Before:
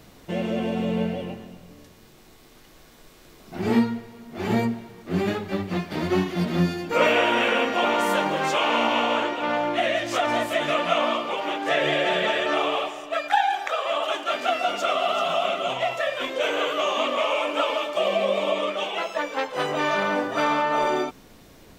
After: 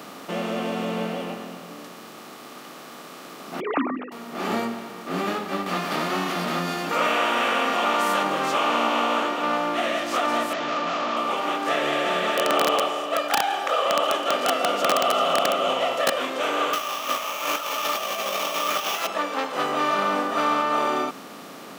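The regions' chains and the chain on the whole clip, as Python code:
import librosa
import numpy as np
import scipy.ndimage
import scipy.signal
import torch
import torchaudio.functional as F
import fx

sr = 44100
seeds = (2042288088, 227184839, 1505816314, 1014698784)

y = fx.chain(x, sr, fx.sine_speech(),
    fx.hum_notches(base_hz=50, count=7), at=(3.6, 4.12))
y = fx.chain(y, sr, fx.peak_eq(hz=300.0, db=-7.5, octaves=1.9),
    fx.env_flatten(amount_pct=50), at=(5.66, 8.23))
y = fx.chain(y, sr, fx.overload_stage(gain_db=26.5),
    fx.air_absorb(metres=120.0),
    fx.resample_bad(factor=3, down='none', up='filtered'), at=(10.53, 11.17))
y = fx.chain(y, sr, fx.small_body(hz=(510.0, 3000.0), ring_ms=30, db=14),
    fx.echo_feedback(ms=174, feedback_pct=44, wet_db=-22.0),
    fx.overflow_wrap(gain_db=9.5), at=(12.37, 16.2))
y = fx.chain(y, sr, fx.weighting(curve='ITU-R 468'),
    fx.over_compress(threshold_db=-27.0, ratio=-0.5),
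    fx.sample_hold(seeds[0], rate_hz=9000.0, jitter_pct=0), at=(16.73, 19.07))
y = fx.bin_compress(y, sr, power=0.6)
y = scipy.signal.sosfilt(scipy.signal.butter(4, 170.0, 'highpass', fs=sr, output='sos'), y)
y = fx.peak_eq(y, sr, hz=1200.0, db=11.5, octaves=0.23)
y = y * librosa.db_to_amplitude(-7.0)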